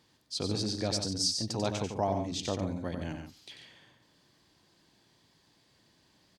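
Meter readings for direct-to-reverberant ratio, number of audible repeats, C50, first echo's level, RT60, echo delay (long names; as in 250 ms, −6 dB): no reverb audible, 2, no reverb audible, −6.5 dB, no reverb audible, 92 ms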